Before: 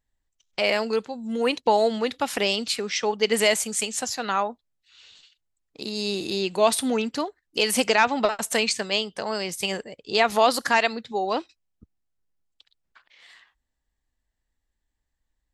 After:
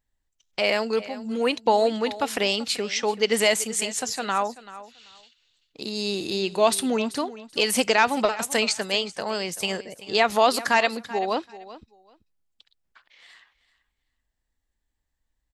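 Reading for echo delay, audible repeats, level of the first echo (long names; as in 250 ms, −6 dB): 385 ms, 2, −16.5 dB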